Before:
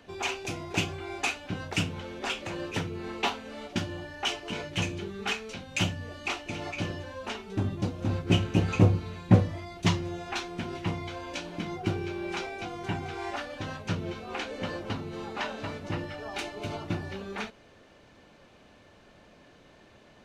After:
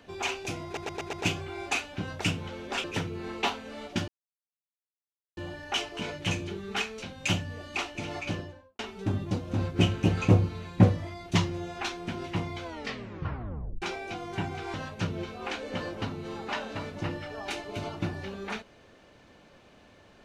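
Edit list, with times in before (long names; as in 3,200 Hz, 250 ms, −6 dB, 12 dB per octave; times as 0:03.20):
0:00.65: stutter 0.12 s, 5 plays
0:02.36–0:02.64: remove
0:03.88: splice in silence 1.29 s
0:06.76–0:07.30: fade out and dull
0:11.14: tape stop 1.19 s
0:13.25–0:13.62: remove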